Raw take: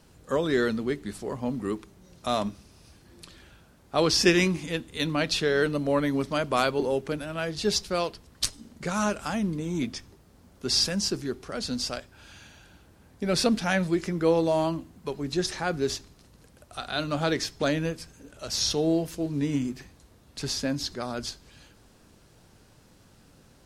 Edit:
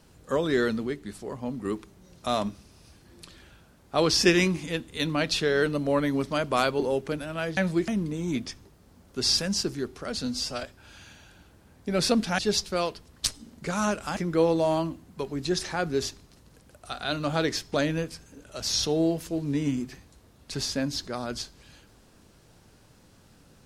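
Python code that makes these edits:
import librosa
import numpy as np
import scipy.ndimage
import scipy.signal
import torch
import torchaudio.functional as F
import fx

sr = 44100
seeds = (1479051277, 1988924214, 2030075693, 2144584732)

y = fx.edit(x, sr, fx.clip_gain(start_s=0.87, length_s=0.78, db=-3.0),
    fx.swap(start_s=7.57, length_s=1.78, other_s=13.73, other_length_s=0.31),
    fx.stretch_span(start_s=11.73, length_s=0.25, factor=1.5), tone=tone)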